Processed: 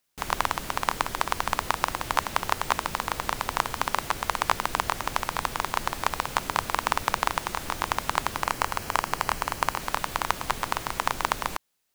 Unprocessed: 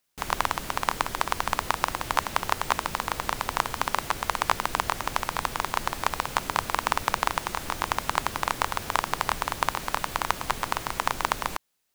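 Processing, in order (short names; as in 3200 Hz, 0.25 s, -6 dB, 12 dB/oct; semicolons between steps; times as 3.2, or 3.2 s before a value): 8.43–9.81 notch 3600 Hz, Q 8.3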